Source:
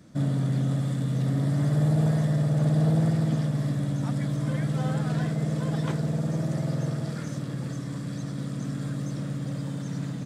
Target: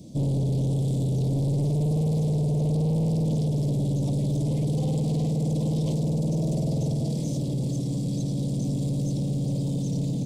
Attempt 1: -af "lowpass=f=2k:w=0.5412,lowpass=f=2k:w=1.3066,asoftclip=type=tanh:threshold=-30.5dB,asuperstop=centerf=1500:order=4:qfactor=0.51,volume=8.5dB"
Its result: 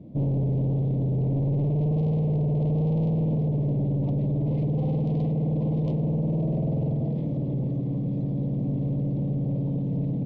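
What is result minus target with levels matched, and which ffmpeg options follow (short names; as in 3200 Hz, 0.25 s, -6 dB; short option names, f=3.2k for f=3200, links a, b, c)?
2000 Hz band -4.0 dB
-af "asoftclip=type=tanh:threshold=-30.5dB,asuperstop=centerf=1500:order=4:qfactor=0.51,volume=8.5dB"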